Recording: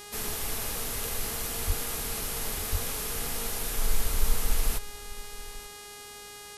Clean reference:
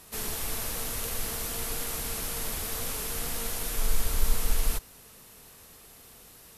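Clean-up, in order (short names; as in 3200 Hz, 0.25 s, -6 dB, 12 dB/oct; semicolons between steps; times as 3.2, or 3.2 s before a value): de-hum 411.8 Hz, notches 26; 1.66–1.78 HPF 140 Hz 24 dB/oct; 2.71–2.83 HPF 140 Hz 24 dB/oct; inverse comb 0.887 s -18 dB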